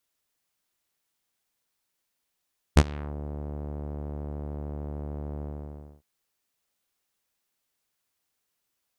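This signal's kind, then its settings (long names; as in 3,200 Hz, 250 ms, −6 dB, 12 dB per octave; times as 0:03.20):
subtractive voice saw D2 12 dB per octave, low-pass 660 Hz, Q 1.1, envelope 4 octaves, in 0.38 s, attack 19 ms, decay 0.05 s, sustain −23 dB, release 0.60 s, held 2.66 s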